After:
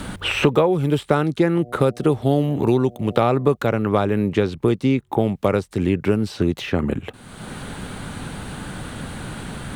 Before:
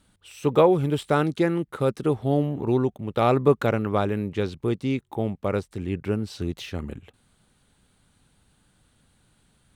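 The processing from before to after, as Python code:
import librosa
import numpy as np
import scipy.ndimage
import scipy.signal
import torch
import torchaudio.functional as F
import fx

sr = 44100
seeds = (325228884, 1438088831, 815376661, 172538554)

y = fx.dmg_buzz(x, sr, base_hz=120.0, harmonics=6, level_db=-50.0, tilt_db=0, odd_only=False, at=(1.54, 3.55), fade=0.02)
y = fx.band_squash(y, sr, depth_pct=100)
y = y * librosa.db_to_amplitude(4.0)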